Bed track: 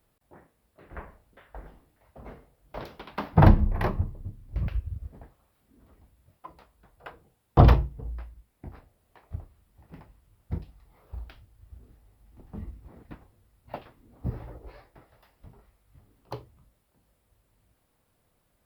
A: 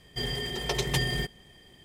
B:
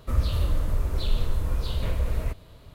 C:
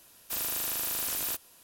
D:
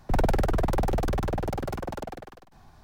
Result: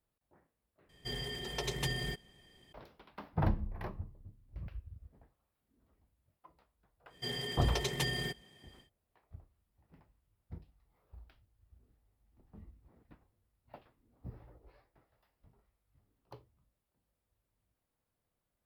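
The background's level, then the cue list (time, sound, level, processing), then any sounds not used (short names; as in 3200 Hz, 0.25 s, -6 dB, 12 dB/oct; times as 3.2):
bed track -15 dB
0.89 replace with A -8 dB
7.06 add A -6 dB, fades 0.10 s + HPF 120 Hz
not used: B, C, D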